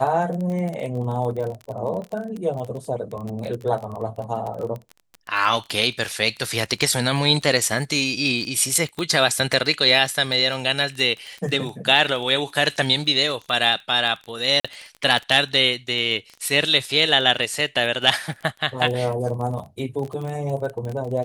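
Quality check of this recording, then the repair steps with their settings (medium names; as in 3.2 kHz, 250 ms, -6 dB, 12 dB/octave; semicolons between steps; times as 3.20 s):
crackle 23 per s -27 dBFS
2.02 s: dropout 2 ms
8.99 s: pop -14 dBFS
14.60–14.64 s: dropout 45 ms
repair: de-click; interpolate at 2.02 s, 2 ms; interpolate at 14.60 s, 45 ms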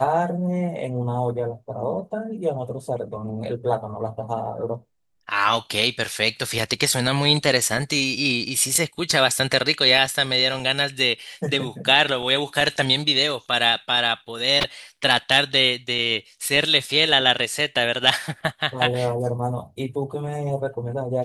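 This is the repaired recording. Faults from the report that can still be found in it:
nothing left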